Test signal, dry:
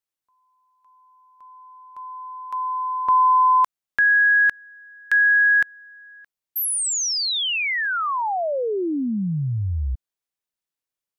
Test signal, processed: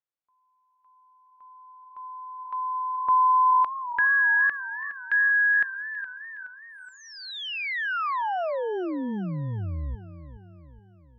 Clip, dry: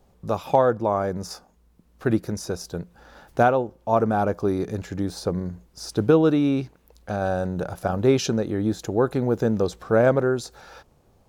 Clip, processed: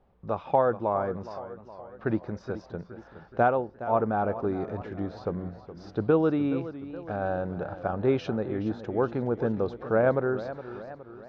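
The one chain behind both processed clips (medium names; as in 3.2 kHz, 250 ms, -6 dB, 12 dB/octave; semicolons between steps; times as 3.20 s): Gaussian low-pass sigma 2.5 samples; peaking EQ 1.2 kHz +4 dB 2.7 oct; modulated delay 419 ms, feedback 52%, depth 100 cents, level -13.5 dB; trim -7 dB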